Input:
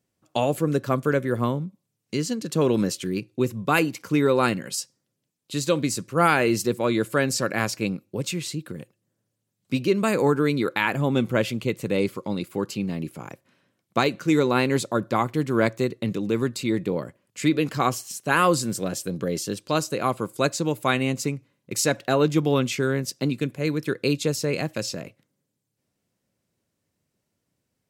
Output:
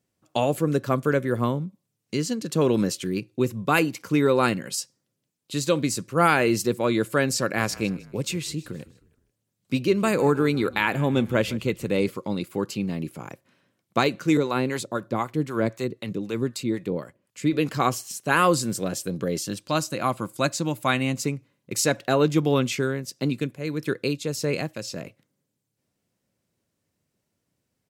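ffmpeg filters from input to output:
-filter_complex "[0:a]asplit=3[s0][s1][s2];[s0]afade=t=out:st=7.56:d=0.02[s3];[s1]asplit=4[s4][s5][s6][s7];[s5]adelay=156,afreqshift=-34,volume=0.1[s8];[s6]adelay=312,afreqshift=-68,volume=0.0442[s9];[s7]adelay=468,afreqshift=-102,volume=0.0193[s10];[s4][s8][s9][s10]amix=inputs=4:normalize=0,afade=t=in:st=7.56:d=0.02,afade=t=out:st=12.09:d=0.02[s11];[s2]afade=t=in:st=12.09:d=0.02[s12];[s3][s11][s12]amix=inputs=3:normalize=0,asettb=1/sr,asplit=3[s13][s14][s15];[s13]atrim=end=14.374[s16];[s14]atrim=start=14.37:end=17.53,asetpts=PTS-STARTPTS,afade=t=in:d=0.004:c=qsin,afade=t=out:st=3.156:d=0.004:c=qsin,acrossover=split=620[s17][s18];[s17]aeval=exprs='val(0)*(1-0.7/2+0.7/2*cos(2*PI*3.9*n/s))':c=same[s19];[s18]aeval=exprs='val(0)*(1-0.7/2-0.7/2*cos(2*PI*3.9*n/s))':c=same[s20];[s19][s20]amix=inputs=2:normalize=0[s21];[s15]atrim=start=17.526[s22];[s16][s21]acrossfade=d=0.004:c1=hsin:c2=qsin[s23];[s23][s22]acrossfade=d=0.004:c1=qsin:c2=hsin,asettb=1/sr,asplit=3[s24][s25][s26];[s24]atrim=end=19.384[s27];[s25]atrim=start=19.38:end=21.22,asetpts=PTS-STARTPTS,afade=t=in:d=0.004:c=qsin,afade=t=out:st=1.836:d=0.004:c=qsin,equalizer=f=430:w=6.3:g=-14[s28];[s26]atrim=start=21.216[s29];[s27][s28]acrossfade=d=0.004:c1=hsin:c2=qsin[s30];[s30][s29]acrossfade=d=0.004:c1=qsin:c2=hsin,asettb=1/sr,asplit=3[s31][s32][s33];[s31]atrim=end=22.744[s34];[s32]atrim=start=22.74:end=24.96,asetpts=PTS-STARTPTS,afade=t=in:d=0.004:c=qsin,afade=t=out:st=2.216:d=0.004:c=qsin,tremolo=f=1.7:d=0.47[s35];[s33]atrim=start=24.956[s36];[s34][s35]acrossfade=d=0.004:c1=hsin:c2=qsin[s37];[s37][s36]acrossfade=d=0.004:c1=qsin:c2=hsin"

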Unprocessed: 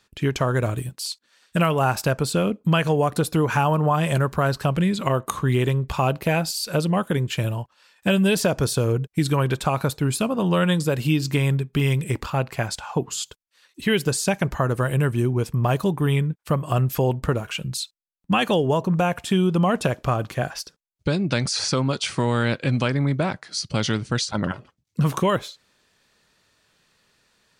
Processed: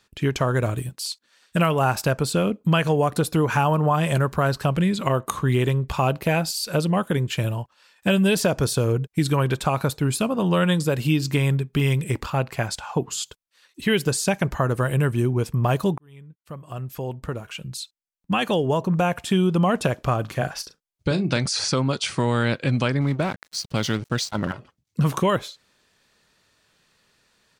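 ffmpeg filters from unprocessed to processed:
-filter_complex "[0:a]asplit=3[s0][s1][s2];[s0]afade=t=out:st=20.25:d=0.02[s3];[s1]asplit=2[s4][s5];[s5]adelay=37,volume=0.282[s6];[s4][s6]amix=inputs=2:normalize=0,afade=t=in:st=20.25:d=0.02,afade=t=out:st=21.39:d=0.02[s7];[s2]afade=t=in:st=21.39:d=0.02[s8];[s3][s7][s8]amix=inputs=3:normalize=0,asettb=1/sr,asplit=3[s9][s10][s11];[s9]atrim=end=23.014[s12];[s10]atrim=start=23.01:end=24.53,asetpts=PTS-STARTPTS,afade=t=in:d=0.004:c=qsin,afade=t=out:st=1.516:d=0.004:c=qsin,aeval=exprs='sgn(val(0))*max(abs(val(0))-0.0112,0)':c=same[s13];[s11]atrim=start=24.526[s14];[s12][s13]acrossfade=d=0.004:c1=hsin:c2=qsin[s15];[s15][s14]acrossfade=d=0.004:c1=qsin:c2=hsin,asplit=2[s16][s17];[s16]atrim=end=15.98,asetpts=PTS-STARTPTS,afade=t=out:st=15.976:d=0.004:c=hsin[s18];[s17]atrim=start=15.98,asetpts=PTS-STARTPTS,afade=t=in:d=3.1[s19];[s18][s19]concat=n=2:v=0:a=1"

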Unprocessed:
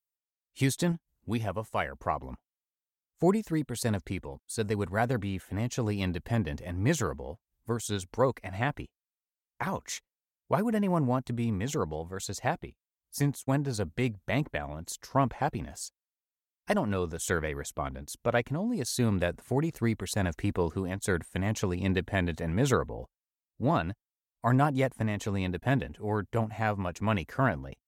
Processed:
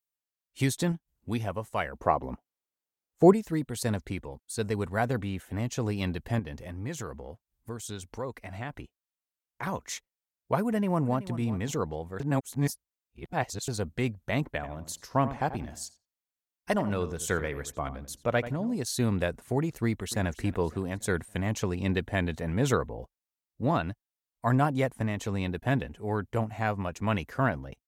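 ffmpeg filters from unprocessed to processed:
-filter_complex "[0:a]asettb=1/sr,asplit=3[s0][s1][s2];[s0]atrim=end=1.934[s3];[s1]atrim=start=1.93:end=3.33,asetpts=PTS-STARTPTS,afade=t=in:d=0.004:c=qsin,afade=t=out:st=1.396:d=0.004:c=qsin,equalizer=f=430:t=o:w=2.9:g=7.5[s4];[s2]atrim=start=3.326[s5];[s3][s4]acrossfade=d=0.004:c1=hsin:c2=qsin[s6];[s6][s5]acrossfade=d=0.004:c1=qsin:c2=hsin,asettb=1/sr,asplit=3[s7][s8][s9];[s7]atrim=end=6.394[s10];[s8]atrim=start=6.39:end=9.63,asetpts=PTS-STARTPTS,afade=t=in:d=0.004:c=qsin,afade=t=out:st=3.236:d=0.004:c=qsin,acompressor=threshold=0.0126:ratio=2:attack=3.2:release=140:knee=1:detection=peak[s11];[s9]atrim=start=9.626[s12];[s10][s11]acrossfade=d=0.004:c1=hsin:c2=qsin[s13];[s13][s12]acrossfade=d=0.004:c1=qsin:c2=hsin,asplit=2[s14][s15];[s15]afade=t=in:st=10.67:d=0.01,afade=t=out:st=11.33:d=0.01,aecho=0:1:380|760:0.188365|0.0188365[s16];[s14][s16]amix=inputs=2:normalize=0,asettb=1/sr,asplit=3[s17][s18][s19];[s17]atrim=end=14.504[s20];[s18]atrim=start=14.5:end=18.76,asetpts=PTS-STARTPTS,afade=t=in:d=0.004:c=qsin,afade=t=out:st=4.256:d=0.004:c=qsin,asplit=2[s21][s22];[s22]adelay=87,lowpass=f=2000:p=1,volume=0.251,asplit=2[s23][s24];[s24]adelay=87,lowpass=f=2000:p=1,volume=0.22,asplit=2[s25][s26];[s26]adelay=87,lowpass=f=2000:p=1,volume=0.22[s27];[s21][s23][s25][s27]amix=inputs=4:normalize=0,atrim=end_sample=187866[s28];[s19]atrim=start=18.756[s29];[s20][s28]acrossfade=d=0.004:c1=hsin:c2=qsin[s30];[s30][s29]acrossfade=d=0.004:c1=qsin:c2=hsin,asplit=2[s31][s32];[s32]afade=t=in:st=19.83:d=0.01,afade=t=out:st=20.26:d=0.01,aecho=0:1:280|560|840|1120:0.133352|0.0666761|0.033338|0.016669[s33];[s31][s33]amix=inputs=2:normalize=0,asplit=3[s34][s35][s36];[s34]atrim=end=12.202[s37];[s35]atrim=start=12.198:end=13.682,asetpts=PTS-STARTPTS,areverse[s38];[s36]atrim=start=13.678[s39];[s37][s38]acrossfade=d=0.004:c1=hsin:c2=hsin[s40];[s40][s39]acrossfade=d=0.004:c1=hsin:c2=hsin"

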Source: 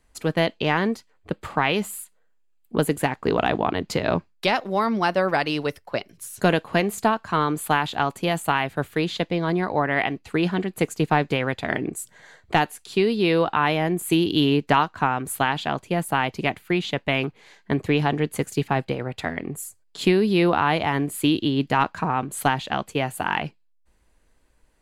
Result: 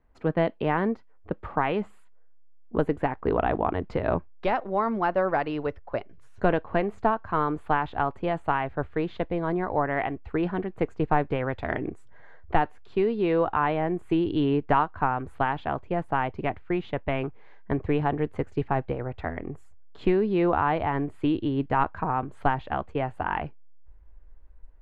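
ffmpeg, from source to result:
-filter_complex "[0:a]asettb=1/sr,asplit=3[s0][s1][s2];[s0]atrim=end=11.534[s3];[s1]atrim=start=11.53:end=11.93,asetpts=PTS-STARTPTS,afade=t=in:d=0.004:c=qsin,afade=t=out:st=0.396:d=0.004:c=qsin,equalizer=f=11000:w=0.3:g=9.5[s4];[s2]atrim=start=11.926[s5];[s3][s4]acrossfade=d=0.004:c1=hsin:c2=qsin[s6];[s6][s5]acrossfade=d=0.004:c1=qsin:c2=hsin,lowpass=1400,asubboost=boost=9:cutoff=55,volume=0.841"

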